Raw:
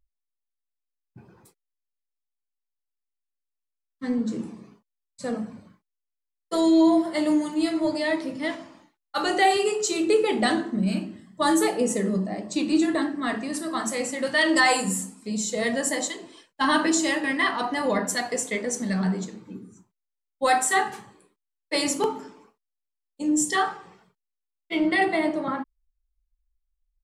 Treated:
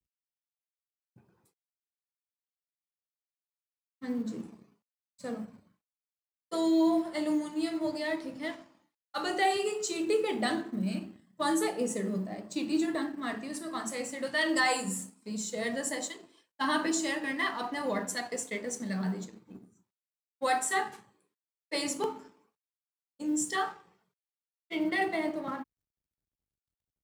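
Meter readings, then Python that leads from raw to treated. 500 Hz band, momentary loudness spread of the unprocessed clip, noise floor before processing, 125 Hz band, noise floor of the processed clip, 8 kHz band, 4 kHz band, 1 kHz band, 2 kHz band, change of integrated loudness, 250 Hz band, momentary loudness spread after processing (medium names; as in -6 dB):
-7.5 dB, 12 LU, -84 dBFS, -8.0 dB, under -85 dBFS, -7.5 dB, -7.5 dB, -7.5 dB, -7.5 dB, -7.5 dB, -7.5 dB, 12 LU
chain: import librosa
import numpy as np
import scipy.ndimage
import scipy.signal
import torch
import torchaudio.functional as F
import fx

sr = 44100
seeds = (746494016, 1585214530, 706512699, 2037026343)

y = fx.law_mismatch(x, sr, coded='A')
y = scipy.signal.sosfilt(scipy.signal.butter(2, 53.0, 'highpass', fs=sr, output='sos'), y)
y = F.gain(torch.from_numpy(y), -7.0).numpy()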